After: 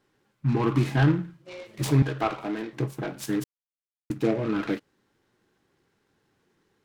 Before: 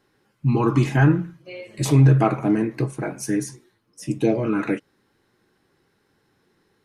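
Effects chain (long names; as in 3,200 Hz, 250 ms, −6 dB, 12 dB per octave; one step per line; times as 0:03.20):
0:02.02–0:02.73: meter weighting curve A
0:03.44–0:04.10: silence
short delay modulated by noise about 1,300 Hz, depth 0.042 ms
level −4.5 dB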